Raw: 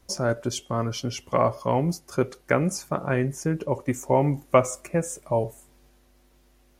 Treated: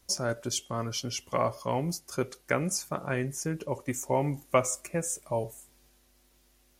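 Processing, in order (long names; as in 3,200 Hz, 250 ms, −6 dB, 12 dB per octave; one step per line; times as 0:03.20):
high-shelf EQ 2,500 Hz +10 dB
level −7 dB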